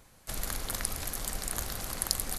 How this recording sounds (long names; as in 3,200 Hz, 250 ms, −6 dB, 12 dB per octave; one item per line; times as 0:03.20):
background noise floor −59 dBFS
spectral slope −2.0 dB per octave